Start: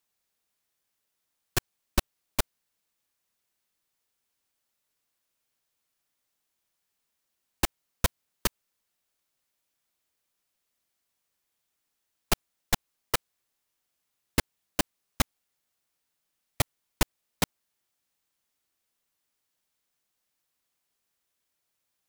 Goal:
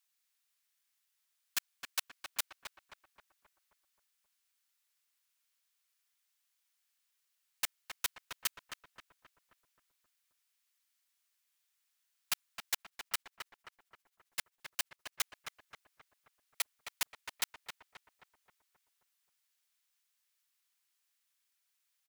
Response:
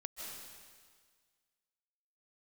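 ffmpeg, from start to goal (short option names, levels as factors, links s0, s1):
-filter_complex "[0:a]highpass=1500,asoftclip=type=tanh:threshold=0.0531,asettb=1/sr,asplit=3[s0][s1][s2];[s0]atrim=end=12.744[s3];[s1]atrim=start=12.74:end=15.21,asetpts=PTS-STARTPTS,afade=t=in:d=0.004:c=qsin,afade=t=out:st=2.466:d=0.004:c=qsin,tremolo=f=15:d=0.65[s4];[s2]atrim=start=15.206[s5];[s3][s4]acrossfade=d=0.004:c1=hsin:c2=qsin[s6];[s6][s5]acrossfade=d=0.004:c1=qsin:c2=hsin,asplit=2[s7][s8];[s8]adelay=265,lowpass=f=2100:p=1,volume=0.562,asplit=2[s9][s10];[s10]adelay=265,lowpass=f=2100:p=1,volume=0.55,asplit=2[s11][s12];[s12]adelay=265,lowpass=f=2100:p=1,volume=0.55,asplit=2[s13][s14];[s14]adelay=265,lowpass=f=2100:p=1,volume=0.55,asplit=2[s15][s16];[s16]adelay=265,lowpass=f=2100:p=1,volume=0.55,asplit=2[s17][s18];[s18]adelay=265,lowpass=f=2100:p=1,volume=0.55,asplit=2[s19][s20];[s20]adelay=265,lowpass=f=2100:p=1,volume=0.55[s21];[s7][s9][s11][s13][s15][s17][s19][s21]amix=inputs=8:normalize=0"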